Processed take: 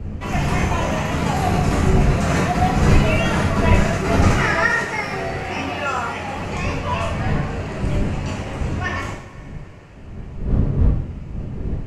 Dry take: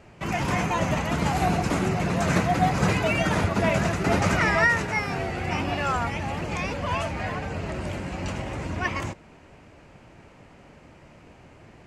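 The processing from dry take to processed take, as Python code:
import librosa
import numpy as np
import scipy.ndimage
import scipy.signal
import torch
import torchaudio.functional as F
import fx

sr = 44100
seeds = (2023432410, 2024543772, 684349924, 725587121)

y = fx.dmg_wind(x, sr, seeds[0], corner_hz=140.0, level_db=-27.0)
y = fx.low_shelf(y, sr, hz=120.0, db=-12.0, at=(4.32, 6.36))
y = fx.rev_double_slope(y, sr, seeds[1], early_s=0.57, late_s=3.2, knee_db=-18, drr_db=-3.5)
y = F.gain(torch.from_numpy(y), -1.5).numpy()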